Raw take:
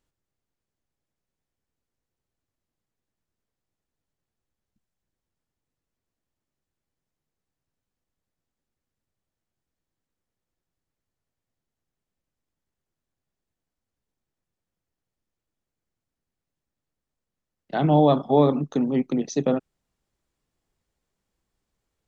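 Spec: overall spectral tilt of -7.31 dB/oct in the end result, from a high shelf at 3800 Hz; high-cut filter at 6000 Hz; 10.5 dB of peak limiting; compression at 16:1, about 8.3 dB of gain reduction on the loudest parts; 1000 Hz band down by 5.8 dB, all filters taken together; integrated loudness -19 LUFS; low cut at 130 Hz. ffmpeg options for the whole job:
-af "highpass=130,lowpass=6k,equalizer=f=1k:t=o:g=-8.5,highshelf=f=3.8k:g=-6.5,acompressor=threshold=-23dB:ratio=16,volume=15.5dB,alimiter=limit=-10dB:level=0:latency=1"

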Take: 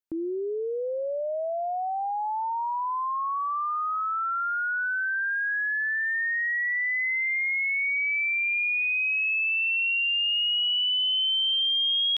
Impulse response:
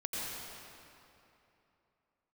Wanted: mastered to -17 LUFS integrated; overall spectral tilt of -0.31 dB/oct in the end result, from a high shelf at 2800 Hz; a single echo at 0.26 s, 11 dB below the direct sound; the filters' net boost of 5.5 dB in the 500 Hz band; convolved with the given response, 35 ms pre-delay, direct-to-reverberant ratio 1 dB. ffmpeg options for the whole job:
-filter_complex "[0:a]equalizer=f=500:t=o:g=7,highshelf=f=2.8k:g=-3.5,aecho=1:1:260:0.282,asplit=2[a][b];[1:a]atrim=start_sample=2205,adelay=35[c];[b][c]afir=irnorm=-1:irlink=0,volume=-5dB[d];[a][d]amix=inputs=2:normalize=0,volume=5.5dB"

